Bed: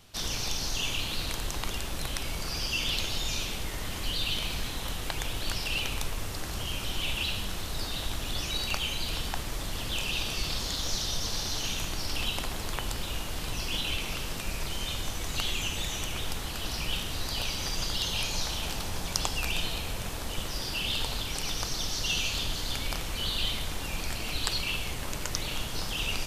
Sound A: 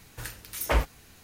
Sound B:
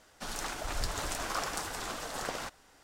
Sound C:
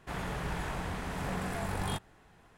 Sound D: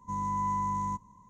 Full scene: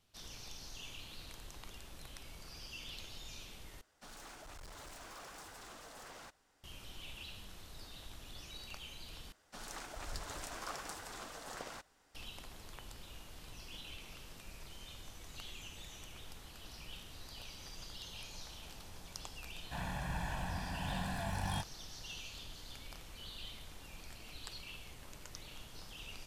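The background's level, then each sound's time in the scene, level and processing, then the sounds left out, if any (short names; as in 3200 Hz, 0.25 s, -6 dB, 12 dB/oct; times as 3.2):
bed -18 dB
3.81 replace with B -12.5 dB + overloaded stage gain 36 dB
9.32 replace with B -9.5 dB
19.64 add C -7 dB + comb 1.2 ms, depth 81%
not used: A, D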